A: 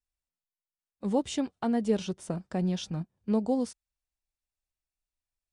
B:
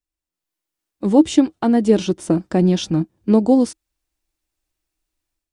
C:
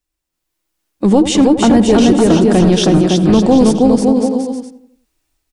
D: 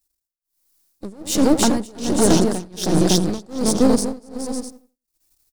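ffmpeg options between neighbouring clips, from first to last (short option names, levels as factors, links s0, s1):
-af "equalizer=f=320:t=o:w=0.29:g=15,dynaudnorm=f=280:g=3:m=3.55,volume=1.12"
-filter_complex "[0:a]asplit=2[s0][s1];[s1]aecho=0:1:320|560|740|875|976.2:0.631|0.398|0.251|0.158|0.1[s2];[s0][s2]amix=inputs=2:normalize=0,apsyclip=4.73,asplit=2[s3][s4];[s4]adelay=85,lowpass=f=1400:p=1,volume=0.282,asplit=2[s5][s6];[s6]adelay=85,lowpass=f=1400:p=1,volume=0.49,asplit=2[s7][s8];[s8]adelay=85,lowpass=f=1400:p=1,volume=0.49,asplit=2[s9][s10];[s10]adelay=85,lowpass=f=1400:p=1,volume=0.49,asplit=2[s11][s12];[s12]adelay=85,lowpass=f=1400:p=1,volume=0.49[s13];[s5][s7][s9][s11][s13]amix=inputs=5:normalize=0[s14];[s3][s14]amix=inputs=2:normalize=0,volume=0.596"
-filter_complex "[0:a]aeval=exprs='if(lt(val(0),0),0.251*val(0),val(0))':c=same,acrossover=split=610[s0][s1];[s1]aexciter=amount=2.8:drive=6.8:freq=4100[s2];[s0][s2]amix=inputs=2:normalize=0,tremolo=f=1.3:d=0.97,volume=0.891"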